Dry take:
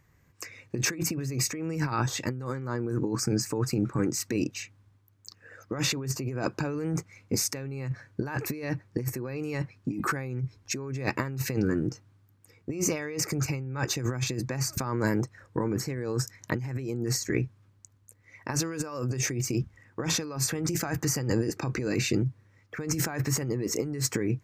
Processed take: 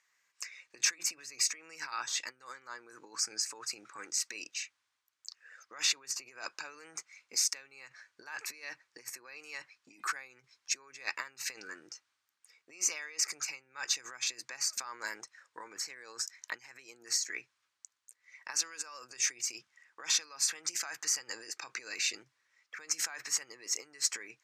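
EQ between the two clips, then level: high-pass 1.2 kHz 12 dB/octave; low-pass 7.4 kHz 12 dB/octave; treble shelf 2.7 kHz +9 dB; -5.5 dB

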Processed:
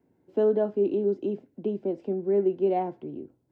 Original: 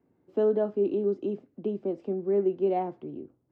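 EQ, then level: Butterworth band-stop 1.2 kHz, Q 7.2; +1.5 dB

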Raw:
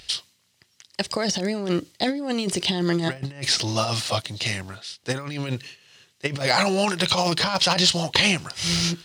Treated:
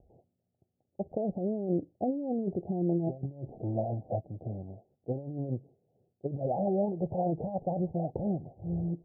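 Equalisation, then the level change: steep low-pass 780 Hz 96 dB/octave; -5.5 dB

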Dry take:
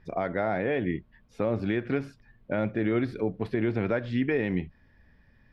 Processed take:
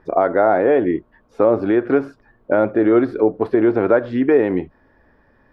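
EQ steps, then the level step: high-order bell 640 Hz +14 dB 2.8 oct; 0.0 dB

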